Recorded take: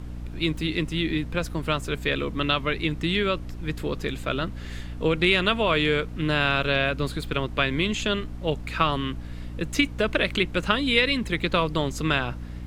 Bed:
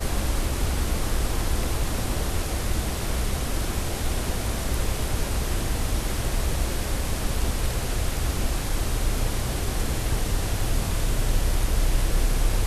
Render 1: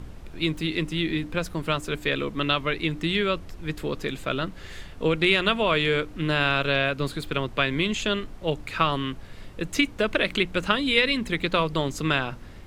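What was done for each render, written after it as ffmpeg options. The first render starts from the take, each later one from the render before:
-af "bandreject=f=60:t=h:w=4,bandreject=f=120:t=h:w=4,bandreject=f=180:t=h:w=4,bandreject=f=240:t=h:w=4,bandreject=f=300:t=h:w=4"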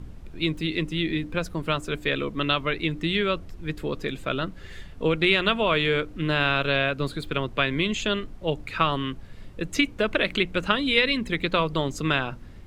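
-af "afftdn=nr=6:nf=-42"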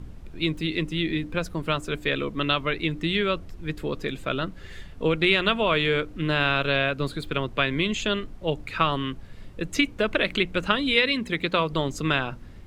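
-filter_complex "[0:a]asettb=1/sr,asplit=3[s0][s1][s2];[s0]atrim=end=10.964[s3];[s1]atrim=start=10.96:end=11.71,asetpts=PTS-STARTPTS,afade=t=in:d=0.004:c=qsin,afade=t=out:st=0.746:d=0.004:c=qsin,highpass=f=100:p=1[s4];[s2]atrim=start=11.706[s5];[s3][s4]acrossfade=d=0.004:c1=hsin:c2=qsin[s6];[s6][s5]acrossfade=d=0.004:c1=qsin:c2=hsin"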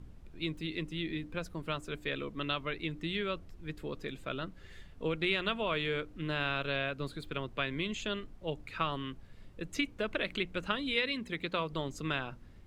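-af "volume=0.299"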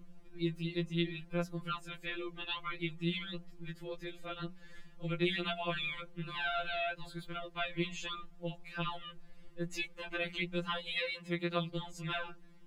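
-af "afftfilt=real='re*2.83*eq(mod(b,8),0)':imag='im*2.83*eq(mod(b,8),0)':win_size=2048:overlap=0.75"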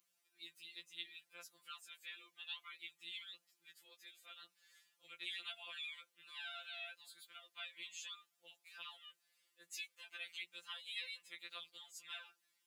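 -af "highpass=f=730:p=1,aderivative"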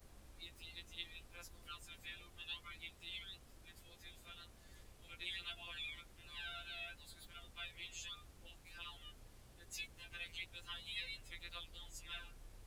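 -filter_complex "[1:a]volume=0.0168[s0];[0:a][s0]amix=inputs=2:normalize=0"

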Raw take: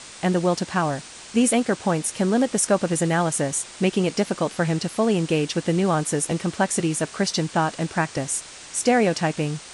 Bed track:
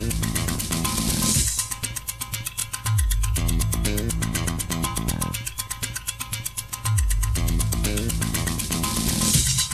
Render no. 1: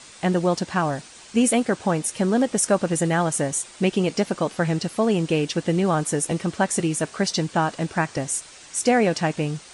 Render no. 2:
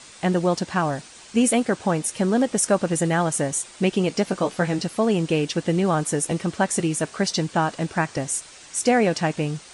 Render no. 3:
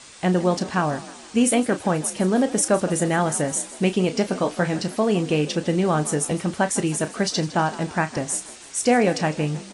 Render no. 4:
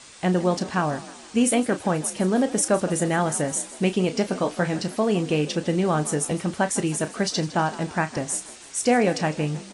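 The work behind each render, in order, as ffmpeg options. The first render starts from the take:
-af "afftdn=nr=6:nf=-42"
-filter_complex "[0:a]asettb=1/sr,asplit=3[s0][s1][s2];[s0]atrim=end=4.264[s3];[s1]atrim=start=4.26:end=4.84,asetpts=PTS-STARTPTS,afade=t=in:d=0.004:c=qsin,afade=t=out:st=0.576:d=0.004:c=qsin,asplit=2[s4][s5];[s5]adelay=16,volume=0.447[s6];[s4][s6]amix=inputs=2:normalize=0,atrim=end_sample=25578[s7];[s2]atrim=start=4.836[s8];[s3][s7]acrossfade=d=0.004:c1=hsin:c2=qsin[s9];[s9][s8]acrossfade=d=0.004:c1=qsin:c2=hsin"
-filter_complex "[0:a]asplit=2[s0][s1];[s1]adelay=33,volume=0.266[s2];[s0][s2]amix=inputs=2:normalize=0,asplit=5[s3][s4][s5][s6][s7];[s4]adelay=158,afreqshift=45,volume=0.141[s8];[s5]adelay=316,afreqshift=90,volume=0.0676[s9];[s6]adelay=474,afreqshift=135,volume=0.0324[s10];[s7]adelay=632,afreqshift=180,volume=0.0157[s11];[s3][s8][s9][s10][s11]amix=inputs=5:normalize=0"
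-af "volume=0.841"

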